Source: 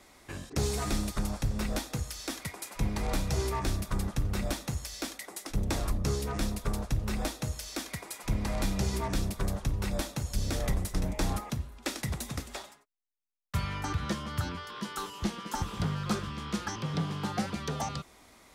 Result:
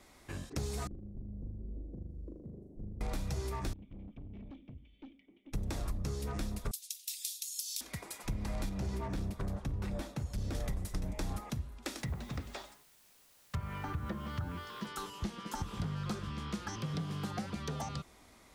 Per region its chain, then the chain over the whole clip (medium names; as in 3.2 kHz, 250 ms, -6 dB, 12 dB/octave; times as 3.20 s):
0.87–3.01 s: inverse Chebyshev low-pass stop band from 1.1 kHz, stop band 50 dB + compression 12:1, threshold -42 dBFS + flutter echo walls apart 6.8 m, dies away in 0.96 s
3.73–5.53 s: cascade formant filter i + valve stage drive 43 dB, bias 0.35
6.71–7.81 s: inverse Chebyshev high-pass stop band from 1.2 kHz, stop band 50 dB + tilt EQ +4.5 dB/octave
8.69–10.55 s: high-pass 48 Hz 6 dB/octave + treble shelf 3.1 kHz -9.5 dB + hard clipper -27.5 dBFS
11.98–14.87 s: low-pass that closes with the level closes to 1.5 kHz, closed at -28 dBFS + word length cut 10-bit, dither triangular + hum notches 50/100/150/200/250/300/350 Hz
16.73–17.31 s: treble shelf 8.2 kHz +7 dB + band-stop 890 Hz, Q 9.6
whole clip: compression, threshold -32 dBFS; bass shelf 250 Hz +4.5 dB; trim -4 dB